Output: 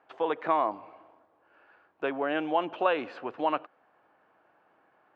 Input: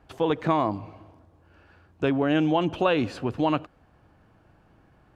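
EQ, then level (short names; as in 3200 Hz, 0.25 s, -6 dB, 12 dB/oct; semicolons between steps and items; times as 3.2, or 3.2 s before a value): HPF 550 Hz 12 dB/oct; LPF 2200 Hz 12 dB/oct; 0.0 dB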